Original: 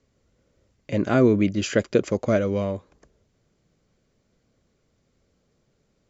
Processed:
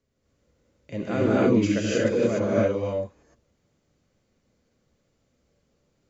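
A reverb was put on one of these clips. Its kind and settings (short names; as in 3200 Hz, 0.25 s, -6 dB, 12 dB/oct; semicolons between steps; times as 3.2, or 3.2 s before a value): non-linear reverb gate 0.32 s rising, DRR -7.5 dB; gain -9 dB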